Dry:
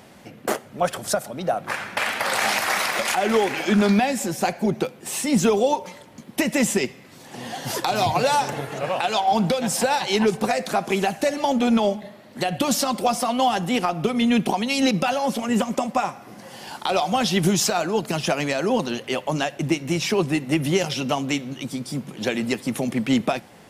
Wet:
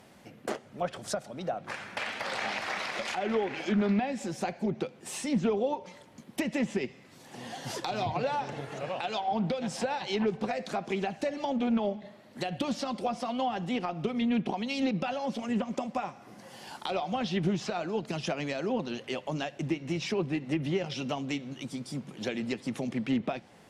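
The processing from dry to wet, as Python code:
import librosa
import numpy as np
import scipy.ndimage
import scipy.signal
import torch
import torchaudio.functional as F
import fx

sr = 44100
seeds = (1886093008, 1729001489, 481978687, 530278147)

y = fx.env_lowpass_down(x, sr, base_hz=2500.0, full_db=-16.0)
y = fx.dynamic_eq(y, sr, hz=1200.0, q=0.73, threshold_db=-32.0, ratio=4.0, max_db=-4)
y = fx.doppler_dist(y, sr, depth_ms=0.11)
y = F.gain(torch.from_numpy(y), -8.0).numpy()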